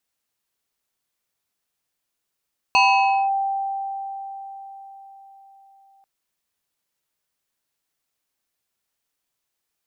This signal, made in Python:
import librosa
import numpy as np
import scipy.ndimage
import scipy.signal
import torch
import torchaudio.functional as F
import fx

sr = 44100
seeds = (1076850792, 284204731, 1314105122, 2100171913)

y = fx.fm2(sr, length_s=3.29, level_db=-11.5, carrier_hz=784.0, ratio=2.27, index=1.6, index_s=0.55, decay_s=4.7, shape='linear')